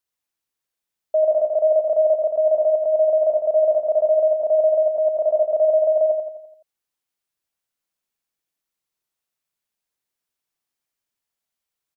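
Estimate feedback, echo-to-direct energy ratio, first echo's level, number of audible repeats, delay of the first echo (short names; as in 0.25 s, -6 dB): 49%, -4.0 dB, -5.0 dB, 5, 85 ms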